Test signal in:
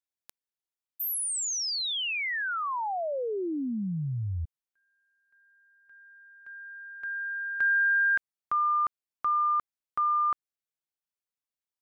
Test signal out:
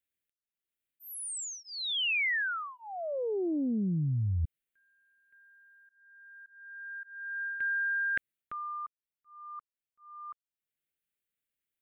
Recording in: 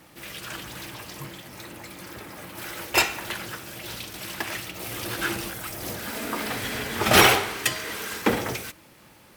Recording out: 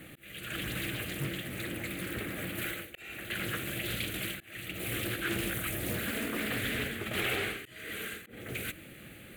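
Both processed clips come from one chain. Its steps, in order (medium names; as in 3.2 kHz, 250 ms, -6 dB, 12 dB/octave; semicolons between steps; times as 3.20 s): reverse; compression 10:1, threshold -33 dBFS; reverse; static phaser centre 2.3 kHz, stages 4; slow attack 536 ms; loudspeaker Doppler distortion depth 0.34 ms; trim +6 dB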